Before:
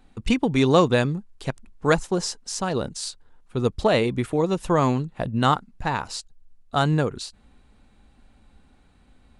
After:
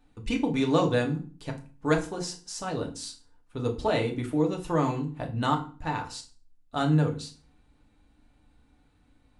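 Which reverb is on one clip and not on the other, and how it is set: FDN reverb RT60 0.38 s, low-frequency decay 1.4×, high-frequency decay 0.85×, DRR 1 dB; trim -9 dB

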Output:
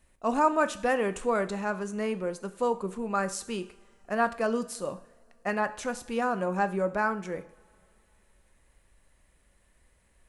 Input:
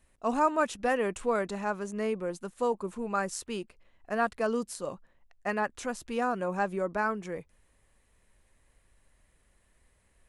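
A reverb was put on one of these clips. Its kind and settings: two-slope reverb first 0.58 s, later 3 s, from -22 dB, DRR 10.5 dB; trim +1.5 dB

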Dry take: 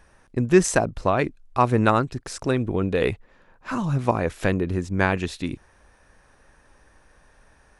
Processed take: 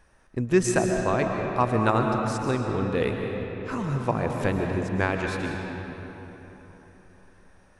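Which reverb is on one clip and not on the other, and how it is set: algorithmic reverb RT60 3.9 s, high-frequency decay 0.6×, pre-delay 90 ms, DRR 2 dB; trim -4.5 dB

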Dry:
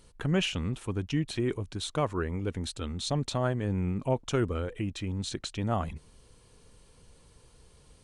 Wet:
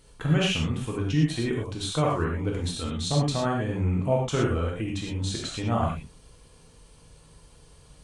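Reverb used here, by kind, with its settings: gated-style reverb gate 140 ms flat, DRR -3 dB

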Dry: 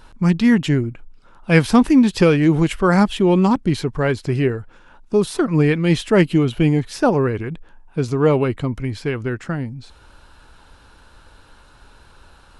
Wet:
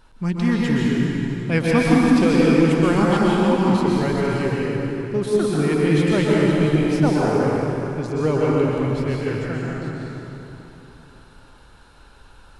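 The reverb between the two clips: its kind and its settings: plate-style reverb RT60 3.3 s, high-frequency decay 0.8×, pre-delay 110 ms, DRR -5.5 dB; trim -7.5 dB

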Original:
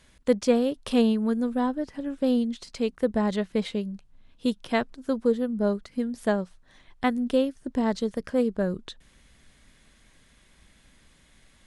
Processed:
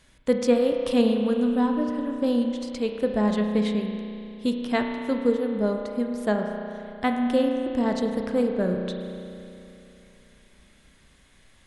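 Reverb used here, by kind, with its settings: spring tank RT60 2.8 s, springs 33 ms, chirp 20 ms, DRR 3 dB

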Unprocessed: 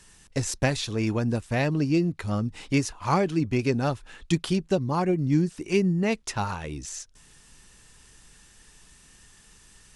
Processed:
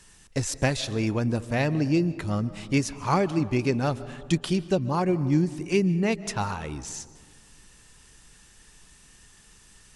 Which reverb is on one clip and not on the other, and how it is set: algorithmic reverb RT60 1.7 s, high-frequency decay 0.3×, pre-delay 105 ms, DRR 16 dB

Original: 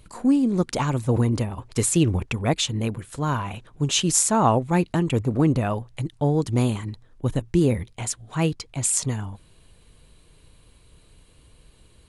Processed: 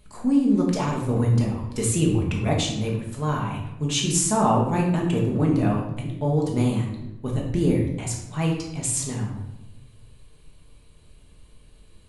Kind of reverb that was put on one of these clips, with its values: simulated room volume 320 m³, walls mixed, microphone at 1.4 m; trim -5.5 dB

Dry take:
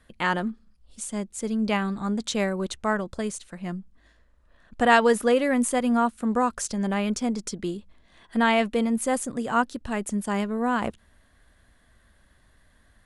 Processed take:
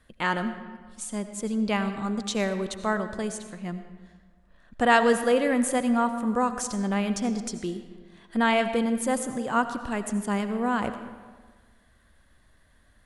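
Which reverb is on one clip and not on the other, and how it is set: algorithmic reverb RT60 1.5 s, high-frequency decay 0.65×, pre-delay 45 ms, DRR 9.5 dB; trim -1.5 dB

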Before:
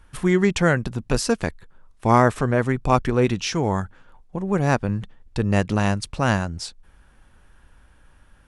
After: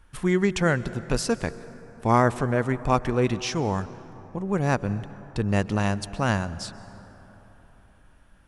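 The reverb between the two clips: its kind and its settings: plate-style reverb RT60 3.9 s, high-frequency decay 0.4×, pre-delay 115 ms, DRR 16 dB; trim -3.5 dB

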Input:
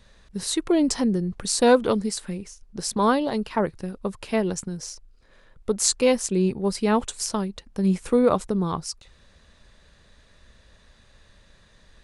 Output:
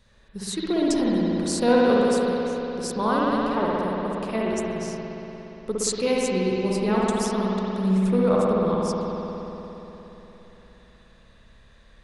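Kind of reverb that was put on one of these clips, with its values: spring tank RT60 3.7 s, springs 58 ms, chirp 40 ms, DRR -5.5 dB; trim -5.5 dB

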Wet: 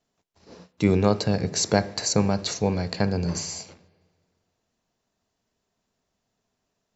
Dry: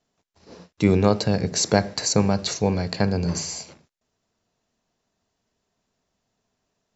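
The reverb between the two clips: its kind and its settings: spring tank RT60 1.9 s, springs 44/59 ms, chirp 50 ms, DRR 19.5 dB; trim -2 dB

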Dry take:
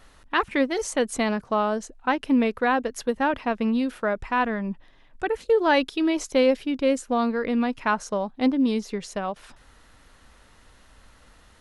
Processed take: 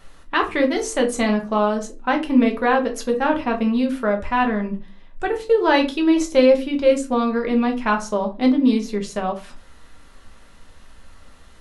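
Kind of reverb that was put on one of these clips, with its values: simulated room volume 130 m³, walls furnished, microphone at 1.2 m; trim +1.5 dB

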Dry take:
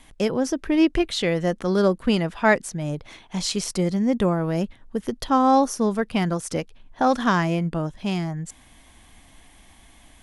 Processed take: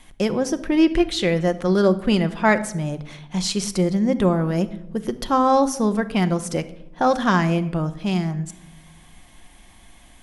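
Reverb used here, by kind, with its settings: simulated room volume 2700 m³, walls furnished, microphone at 0.93 m; trim +1 dB

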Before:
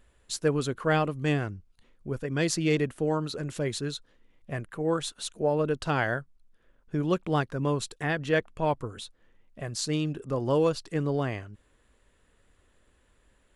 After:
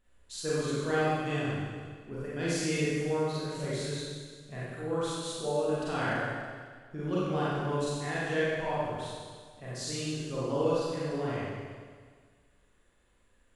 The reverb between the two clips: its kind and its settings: Schroeder reverb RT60 1.7 s, combs from 32 ms, DRR -9 dB; trim -12 dB

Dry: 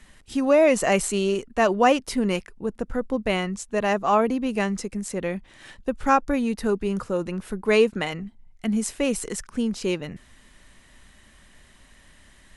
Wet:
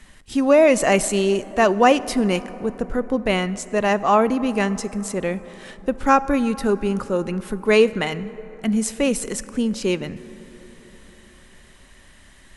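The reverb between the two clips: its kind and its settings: plate-style reverb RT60 4.3 s, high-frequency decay 0.35×, DRR 15.5 dB; trim +3.5 dB

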